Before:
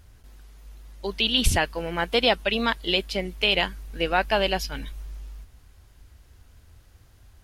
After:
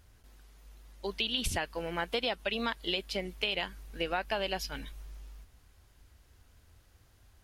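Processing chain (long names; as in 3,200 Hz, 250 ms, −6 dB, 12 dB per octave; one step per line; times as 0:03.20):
low-shelf EQ 180 Hz −4.5 dB
downward compressor 6 to 1, threshold −23 dBFS, peak gain reduction 8 dB
level −5 dB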